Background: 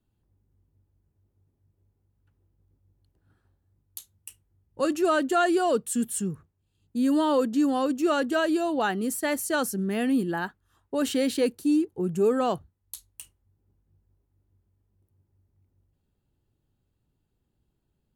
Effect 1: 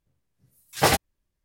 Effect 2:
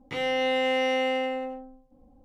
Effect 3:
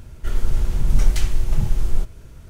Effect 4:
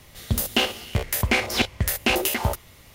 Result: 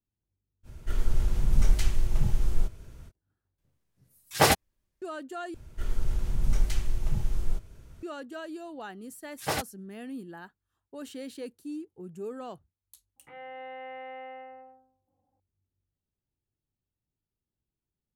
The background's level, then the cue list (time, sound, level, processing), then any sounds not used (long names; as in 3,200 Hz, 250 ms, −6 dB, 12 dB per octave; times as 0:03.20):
background −15 dB
0:00.63: mix in 3 −5.5 dB, fades 0.05 s
0:03.58: overwrite with 1 −1 dB
0:05.54: overwrite with 3 −8.5 dB
0:08.65: mix in 1 −10.5 dB
0:13.16: mix in 2 −17 dB + loudspeaker in its box 150–2,300 Hz, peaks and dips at 240 Hz −9 dB, 410 Hz −6 dB, 820 Hz +7 dB, 1,500 Hz +5 dB
not used: 4